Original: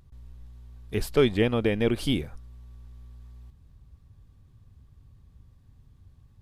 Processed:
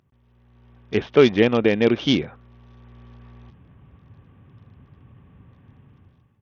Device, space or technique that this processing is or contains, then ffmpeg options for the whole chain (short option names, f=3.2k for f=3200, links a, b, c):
Bluetooth headset: -af "highpass=160,dynaudnorm=f=230:g=5:m=16dB,aresample=8000,aresample=44100,volume=-1.5dB" -ar 48000 -c:a sbc -b:a 64k